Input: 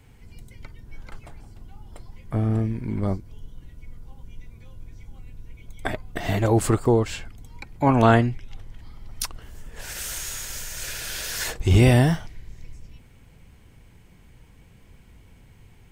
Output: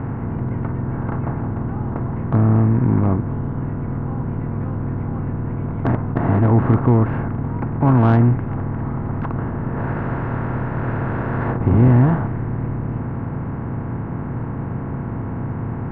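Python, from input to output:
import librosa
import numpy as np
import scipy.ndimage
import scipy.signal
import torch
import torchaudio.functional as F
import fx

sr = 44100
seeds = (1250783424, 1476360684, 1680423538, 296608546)

y = fx.bin_compress(x, sr, power=0.4)
y = scipy.signal.sosfilt(scipy.signal.butter(4, 1800.0, 'lowpass', fs=sr, output='sos'), y)
y = 10.0 ** (-8.5 / 20.0) * np.tanh(y / 10.0 ** (-8.5 / 20.0))
y = fx.graphic_eq(y, sr, hz=(125, 250, 1000), db=(11, 10, 6))
y = y * librosa.db_to_amplitude(-7.5)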